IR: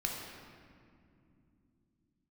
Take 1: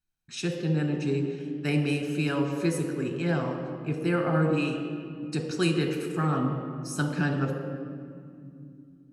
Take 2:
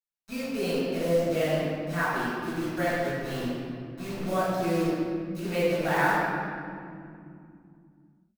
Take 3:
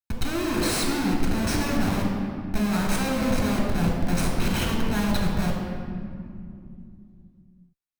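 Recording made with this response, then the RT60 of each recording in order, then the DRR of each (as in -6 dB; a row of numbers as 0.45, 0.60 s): 3; 2.6, 2.6, 2.6 s; 4.0, -11.0, -1.5 dB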